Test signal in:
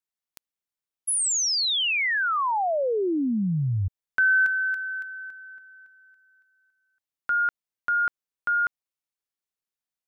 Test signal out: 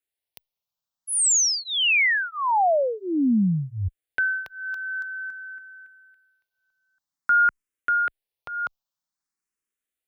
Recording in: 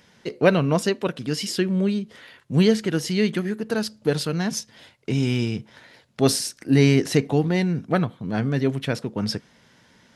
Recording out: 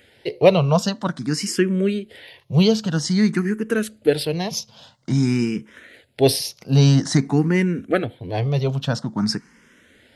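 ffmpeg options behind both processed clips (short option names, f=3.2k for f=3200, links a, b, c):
-filter_complex "[0:a]asplit=2[a][b];[b]afreqshift=0.5[c];[a][c]amix=inputs=2:normalize=1,volume=5.5dB"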